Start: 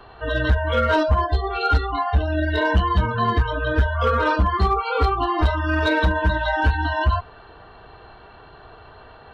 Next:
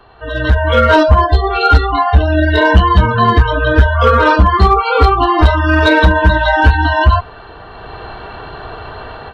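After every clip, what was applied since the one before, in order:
automatic gain control gain up to 16 dB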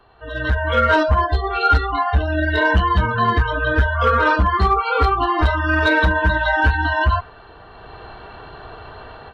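dynamic equaliser 1,600 Hz, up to +5 dB, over −25 dBFS, Q 1.2
level −8.5 dB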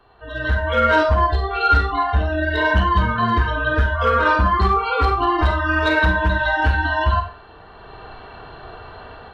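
four-comb reverb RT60 0.39 s, combs from 31 ms, DRR 4 dB
level −2 dB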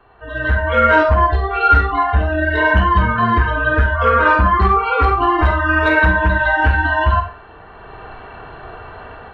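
high shelf with overshoot 3,100 Hz −7.5 dB, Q 1.5
level +3 dB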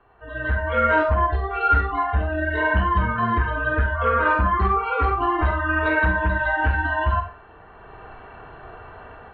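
low-pass filter 3,100 Hz 12 dB per octave
level −6.5 dB

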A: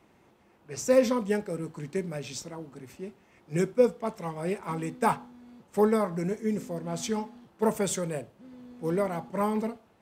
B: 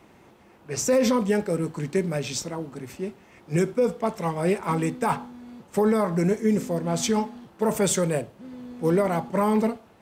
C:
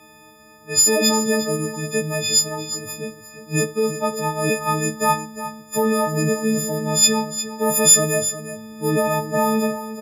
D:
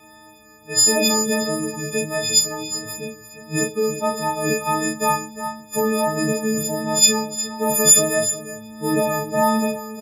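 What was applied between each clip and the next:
brickwall limiter −21 dBFS, peak gain reduction 11.5 dB; level +8 dB
every partial snapped to a pitch grid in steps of 6 semitones; single-tap delay 355 ms −12 dB; level +1 dB
pitch vibrato 1.5 Hz 10 cents; double-tracking delay 35 ms −3 dB; level −1 dB

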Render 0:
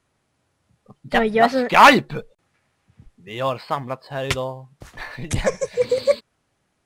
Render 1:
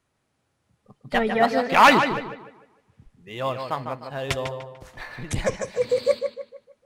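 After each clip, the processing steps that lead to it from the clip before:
tape delay 150 ms, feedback 39%, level −6 dB, low-pass 3,600 Hz
level −4 dB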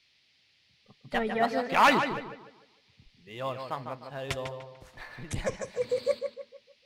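noise in a band 1,900–5,000 Hz −60 dBFS
level −7 dB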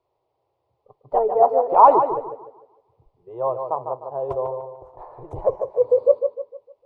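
drawn EQ curve 130 Hz 0 dB, 220 Hz −16 dB, 380 Hz +12 dB, 1,000 Hz +12 dB, 1,700 Hz −23 dB, 4,400 Hz −28 dB

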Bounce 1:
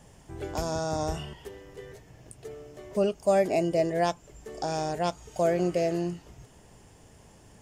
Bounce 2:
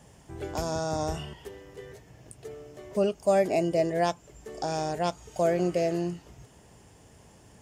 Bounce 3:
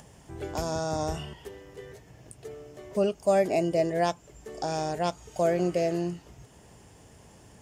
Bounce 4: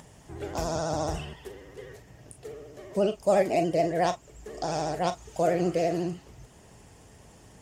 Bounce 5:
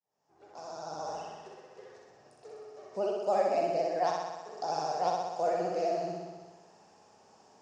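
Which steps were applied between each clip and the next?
high-pass filter 46 Hz
upward compression, threshold −48 dBFS
pitch vibrato 14 Hz 99 cents; on a send at −8.5 dB: convolution reverb, pre-delay 15 ms
fade in at the beginning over 1.66 s; loudspeaker in its box 290–6,200 Hz, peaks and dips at 310 Hz −5 dB, 800 Hz +7 dB, 1,200 Hz +3 dB, 2,000 Hz −7 dB, 3,200 Hz −8 dB, 5,300 Hz +4 dB; flutter between parallel walls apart 10.8 metres, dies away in 1.3 s; level −7.5 dB

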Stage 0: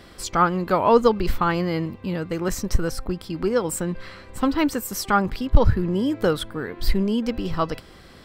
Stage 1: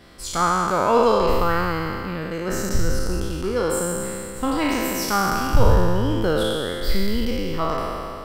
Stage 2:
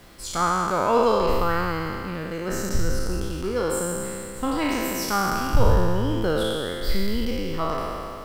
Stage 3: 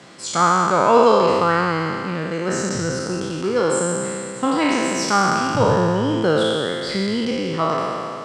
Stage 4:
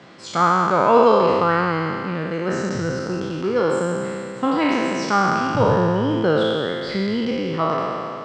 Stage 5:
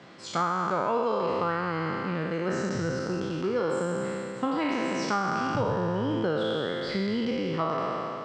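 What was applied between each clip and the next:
peak hold with a decay on every bin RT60 2.58 s; level −4.5 dB
background noise pink −51 dBFS; level −2.5 dB
elliptic band-pass filter 130–8,000 Hz, stop band 40 dB; level +6.5 dB
high-frequency loss of the air 140 metres
downward compressor 6 to 1, threshold −19 dBFS, peak gain reduction 10 dB; level −4.5 dB

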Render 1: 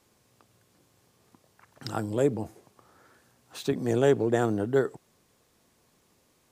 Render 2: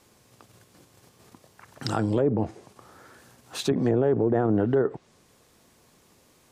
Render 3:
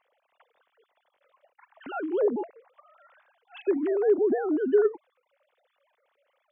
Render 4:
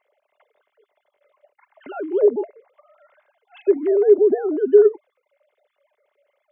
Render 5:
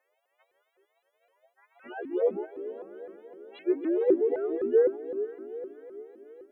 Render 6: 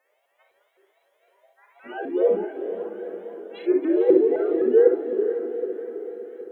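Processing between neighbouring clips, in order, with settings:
in parallel at −2 dB: output level in coarse steps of 13 dB; on the sum: treble cut that deepens with the level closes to 1,200 Hz, closed at −18 dBFS; brickwall limiter −18.5 dBFS, peak gain reduction 10.5 dB; level +5 dB
three sine waves on the formant tracks; level −1.5 dB
hollow resonant body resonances 410/590/2,100 Hz, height 12 dB, ringing for 40 ms; level −2 dB
every partial snapped to a pitch grid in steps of 3 semitones; feedback delay with all-pass diffusion 456 ms, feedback 53%, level −11.5 dB; pitch modulation by a square or saw wave saw up 3.9 Hz, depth 250 cents; level −9 dB
feedback delay with all-pass diffusion 488 ms, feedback 51%, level −11 dB; on a send at −3 dB: convolution reverb, pre-delay 29 ms; on the sum: level +4.5 dB

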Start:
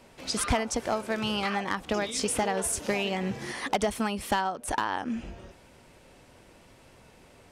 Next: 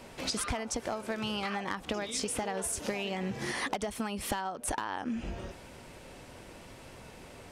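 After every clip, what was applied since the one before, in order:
downward compressor 10 to 1, threshold −36 dBFS, peak gain reduction 15 dB
level +5.5 dB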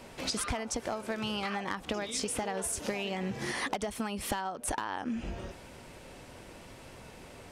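no processing that can be heard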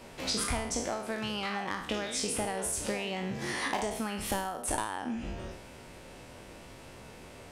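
peak hold with a decay on every bin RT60 0.63 s
level −1.5 dB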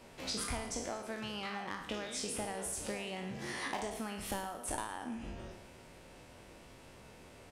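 repeating echo 114 ms, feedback 54%, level −14.5 dB
level −6.5 dB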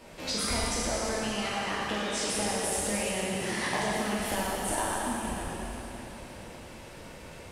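dense smooth reverb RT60 3.6 s, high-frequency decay 1×, DRR −4.5 dB
level +4 dB

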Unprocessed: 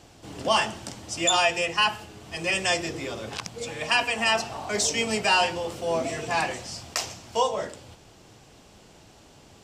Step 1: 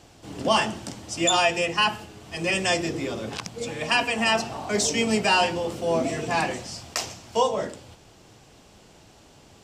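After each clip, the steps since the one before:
dynamic equaliser 230 Hz, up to +7 dB, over −44 dBFS, Q 0.73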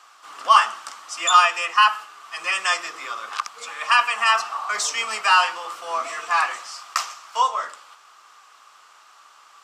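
high-pass with resonance 1,200 Hz, resonance Q 8.6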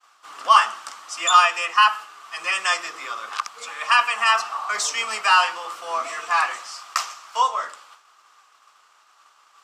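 downward expander −45 dBFS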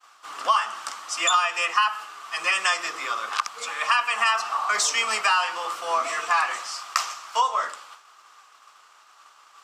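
downward compressor 6 to 1, threshold −21 dBFS, peak gain reduction 12 dB
level +3 dB

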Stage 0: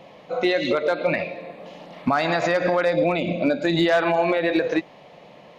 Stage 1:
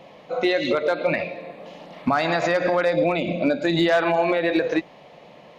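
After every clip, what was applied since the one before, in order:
mains-hum notches 60/120/180 Hz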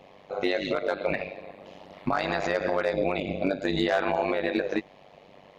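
amplitude modulation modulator 97 Hz, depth 80%
level −2 dB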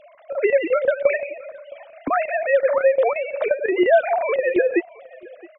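three sine waves on the formant tracks
square-wave tremolo 5.7 Hz, depth 65%, duty 85%
single-tap delay 667 ms −23 dB
level +8.5 dB

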